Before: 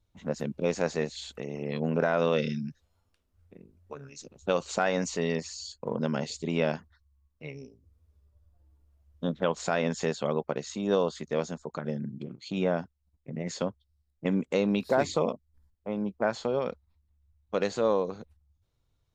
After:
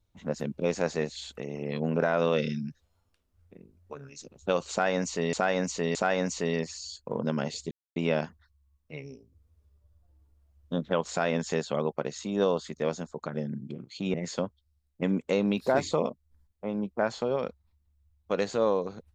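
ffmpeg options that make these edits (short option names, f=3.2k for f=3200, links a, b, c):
-filter_complex "[0:a]asplit=5[a][b][c][d][e];[a]atrim=end=5.332[f];[b]atrim=start=4.708:end=5.332[g];[c]atrim=start=4.708:end=6.47,asetpts=PTS-STARTPTS,afade=t=out:st=1.758:d=0.004:c=hsin,apad=pad_dur=0.25[h];[d]atrim=start=6.47:end=12.652,asetpts=PTS-STARTPTS,afade=t=in:d=0.004:c=hsin[i];[e]atrim=start=13.368[j];[f][g]acrossfade=d=0.004:c1=hsin:c2=hsin[k];[h][i]concat=n=2:v=0:a=1[l];[k][l]acrossfade=d=0.004:c1=hsin:c2=hsin[m];[m][j]acrossfade=d=0.004:c1=hsin:c2=hsin"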